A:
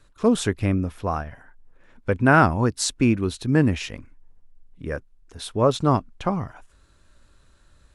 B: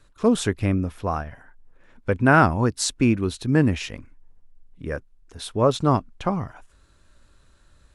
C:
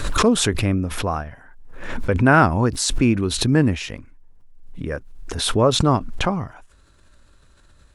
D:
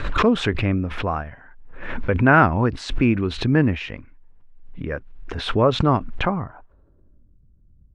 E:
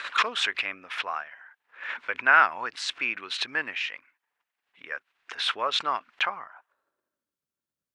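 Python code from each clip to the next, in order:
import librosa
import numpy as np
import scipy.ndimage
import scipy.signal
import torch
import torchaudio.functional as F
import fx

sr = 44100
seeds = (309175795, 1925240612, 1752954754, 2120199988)

y1 = x
y2 = fx.pre_swell(y1, sr, db_per_s=44.0)
y2 = y2 * librosa.db_to_amplitude(1.5)
y3 = fx.filter_sweep_lowpass(y2, sr, from_hz=2500.0, to_hz=180.0, start_s=6.2, end_s=7.39, q=1.2)
y3 = y3 * librosa.db_to_amplitude(-1.0)
y4 = scipy.signal.sosfilt(scipy.signal.butter(2, 1500.0, 'highpass', fs=sr, output='sos'), y3)
y4 = y4 * librosa.db_to_amplitude(2.5)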